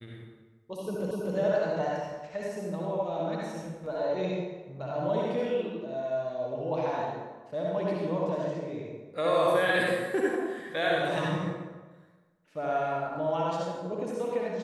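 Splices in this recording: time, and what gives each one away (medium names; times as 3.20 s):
1.11 s: repeat of the last 0.25 s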